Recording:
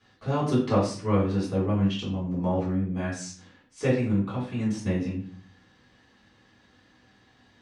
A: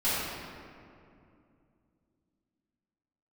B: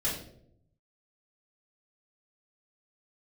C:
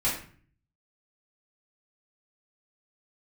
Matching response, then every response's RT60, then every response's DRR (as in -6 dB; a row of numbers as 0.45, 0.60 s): C; 2.5, 0.70, 0.45 s; -14.0, -9.0, -9.0 dB